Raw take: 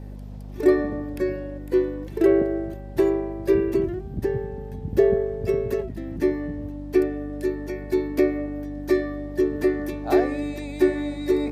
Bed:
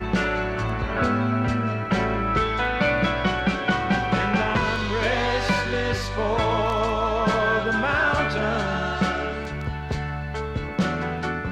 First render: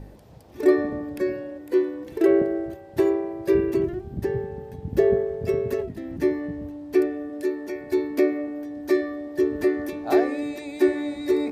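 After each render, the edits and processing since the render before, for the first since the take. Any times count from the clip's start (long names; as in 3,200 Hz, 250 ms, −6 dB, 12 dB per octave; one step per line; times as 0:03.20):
hum removal 50 Hz, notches 10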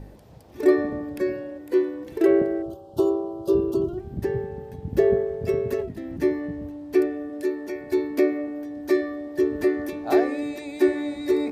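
0:02.62–0:03.98: Chebyshev band-stop filter 1,400–2,900 Hz, order 4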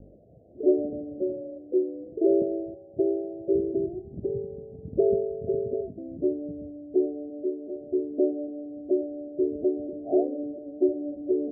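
Butterworth low-pass 690 Hz 96 dB per octave
spectral tilt +2.5 dB per octave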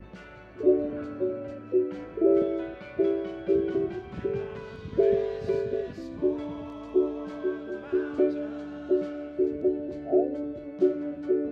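mix in bed −23 dB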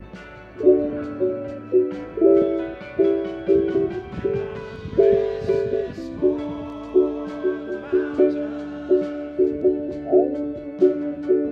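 level +6.5 dB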